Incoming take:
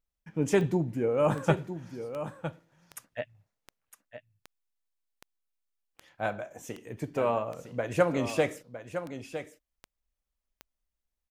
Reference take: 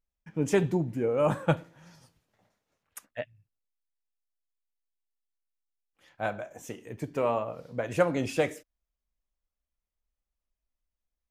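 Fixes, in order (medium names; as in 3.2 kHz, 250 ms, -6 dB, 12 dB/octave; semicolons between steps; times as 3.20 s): de-click; inverse comb 959 ms -10.5 dB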